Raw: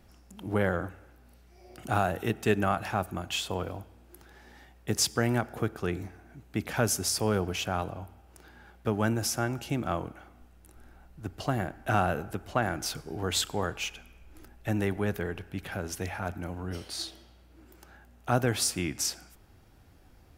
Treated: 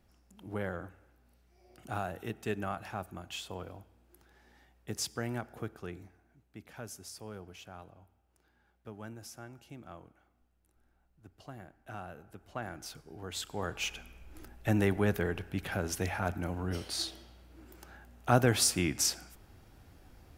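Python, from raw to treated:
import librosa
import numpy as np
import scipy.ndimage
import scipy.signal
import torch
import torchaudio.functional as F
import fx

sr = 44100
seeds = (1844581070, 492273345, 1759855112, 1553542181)

y = fx.gain(x, sr, db=fx.line((5.67, -9.5), (6.59, -18.0), (12.17, -18.0), (12.61, -11.5), (13.34, -11.5), (13.94, 1.0)))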